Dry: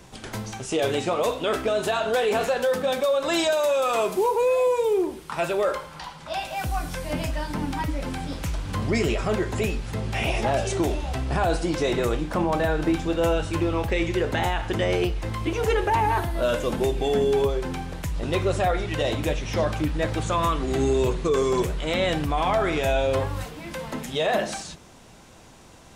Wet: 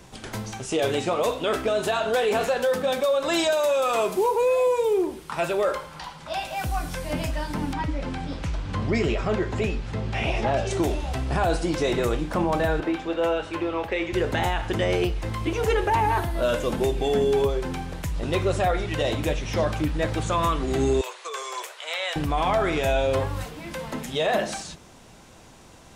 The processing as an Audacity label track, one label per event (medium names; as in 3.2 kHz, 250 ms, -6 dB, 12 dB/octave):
7.730000	10.710000	distance through air 83 m
12.800000	14.130000	three-band isolator lows -14 dB, under 290 Hz, highs -12 dB, over 4 kHz
21.010000	22.160000	Bessel high-pass 940 Hz, order 6